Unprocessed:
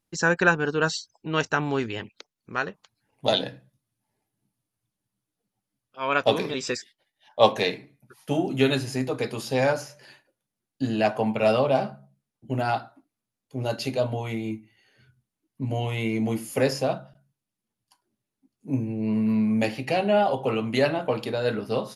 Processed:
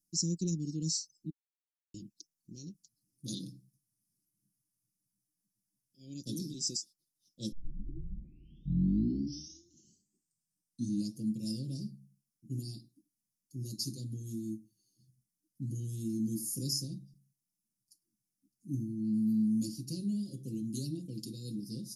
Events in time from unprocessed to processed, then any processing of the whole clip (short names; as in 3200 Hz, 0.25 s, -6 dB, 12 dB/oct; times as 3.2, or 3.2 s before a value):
1.3–1.94 mute
7.52 tape start 3.63 s
20.95–21.43 bell 2600 Hz +6.5 dB 0.48 oct
whole clip: Chebyshev band-stop 290–5200 Hz, order 4; low shelf 390 Hz -10 dB; comb 5.8 ms; gain +1 dB